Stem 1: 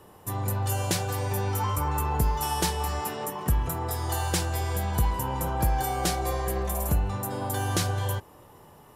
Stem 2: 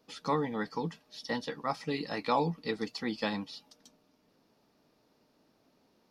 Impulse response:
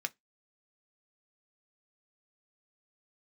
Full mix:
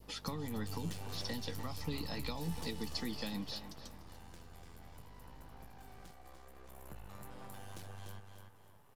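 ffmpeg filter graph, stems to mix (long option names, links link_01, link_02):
-filter_complex "[0:a]acrossover=split=1200|4000[link_01][link_02][link_03];[link_01]acompressor=threshold=-34dB:ratio=4[link_04];[link_02]acompressor=threshold=-43dB:ratio=4[link_05];[link_03]acompressor=threshold=-45dB:ratio=4[link_06];[link_04][link_05][link_06]amix=inputs=3:normalize=0,aeval=exprs='max(val(0),0)':channel_layout=same,volume=1dB,afade=type=out:start_time=3.22:duration=0.31:silence=0.237137,afade=type=in:start_time=6.53:duration=0.55:silence=0.421697,asplit=2[link_07][link_08];[link_08]volume=-6.5dB[link_09];[1:a]acompressor=threshold=-35dB:ratio=3,aeval=exprs='val(0)+0.00112*(sin(2*PI*50*n/s)+sin(2*PI*2*50*n/s)/2+sin(2*PI*3*50*n/s)/3+sin(2*PI*4*50*n/s)/4+sin(2*PI*5*50*n/s)/5)':channel_layout=same,volume=2.5dB,asplit=2[link_10][link_11];[link_11]volume=-16dB[link_12];[link_09][link_12]amix=inputs=2:normalize=0,aecho=0:1:294|588|882|1176|1470:1|0.32|0.102|0.0328|0.0105[link_13];[link_07][link_10][link_13]amix=inputs=3:normalize=0,acrossover=split=230|3000[link_14][link_15][link_16];[link_15]acompressor=threshold=-45dB:ratio=4[link_17];[link_14][link_17][link_16]amix=inputs=3:normalize=0,adynamicequalizer=threshold=0.00112:dfrequency=1400:dqfactor=1.5:tfrequency=1400:tqfactor=1.5:attack=5:release=100:ratio=0.375:range=1.5:mode=cutabove:tftype=bell"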